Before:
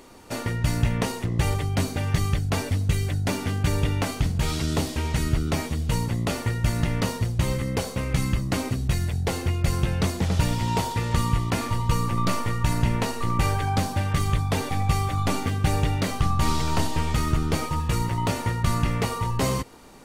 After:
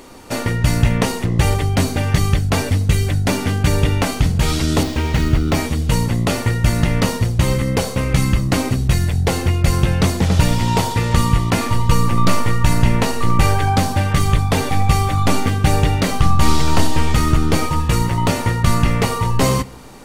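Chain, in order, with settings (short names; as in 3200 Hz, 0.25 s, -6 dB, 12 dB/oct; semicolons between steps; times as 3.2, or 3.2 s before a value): 4.83–5.55 median filter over 5 samples; on a send: reverb RT60 0.55 s, pre-delay 4 ms, DRR 17 dB; on the sum: gain +8 dB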